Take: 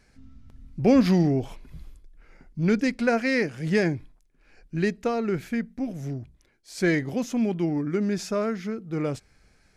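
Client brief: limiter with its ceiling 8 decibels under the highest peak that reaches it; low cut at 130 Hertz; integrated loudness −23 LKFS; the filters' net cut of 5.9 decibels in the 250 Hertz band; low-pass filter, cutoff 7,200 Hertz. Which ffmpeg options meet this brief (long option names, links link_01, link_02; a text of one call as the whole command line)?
ffmpeg -i in.wav -af "highpass=130,lowpass=7200,equalizer=frequency=250:width_type=o:gain=-7,volume=8.5dB,alimiter=limit=-11.5dB:level=0:latency=1" out.wav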